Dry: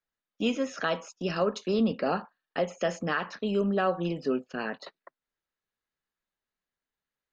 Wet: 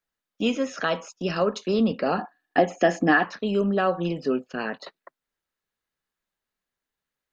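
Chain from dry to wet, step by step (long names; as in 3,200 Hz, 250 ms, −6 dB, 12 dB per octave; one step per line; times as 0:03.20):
0:02.18–0:03.25: hollow resonant body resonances 300/730/1,700 Hz, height 15 dB
level +3.5 dB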